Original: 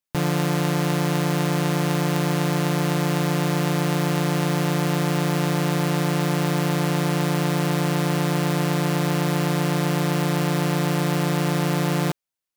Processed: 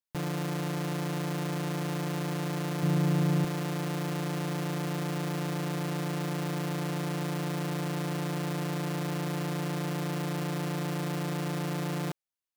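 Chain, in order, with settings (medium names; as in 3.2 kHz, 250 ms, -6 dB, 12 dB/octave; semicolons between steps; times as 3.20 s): saturation -19.5 dBFS, distortion -16 dB; 2.83–3.45 s: bass shelf 240 Hz +11.5 dB; trim -7.5 dB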